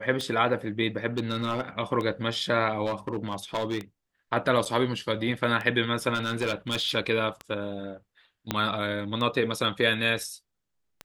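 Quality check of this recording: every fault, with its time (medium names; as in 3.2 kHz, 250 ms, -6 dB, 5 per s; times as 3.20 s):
tick 33 1/3 rpm -20 dBFS
1.18–1.61 s: clipped -21.5 dBFS
2.85–3.78 s: clipped -23.5 dBFS
4.65–4.66 s: dropout 7.4 ms
6.14–6.92 s: clipped -22.5 dBFS
8.51 s: pop -10 dBFS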